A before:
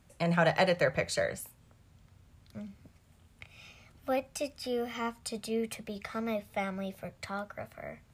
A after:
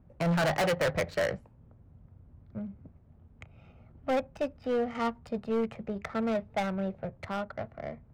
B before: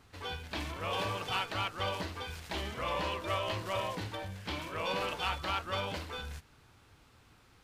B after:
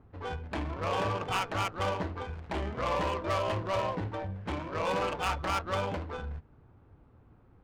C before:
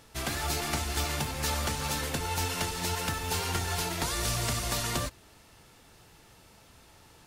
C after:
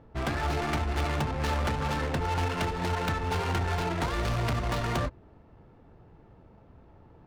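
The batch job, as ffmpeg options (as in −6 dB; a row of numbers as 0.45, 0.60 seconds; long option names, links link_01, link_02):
-af "adynamicsmooth=sensitivity=4:basefreq=760,asoftclip=type=hard:threshold=-29.5dB,volume=5.5dB"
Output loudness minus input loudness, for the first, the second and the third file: +1.0, +3.0, +1.0 LU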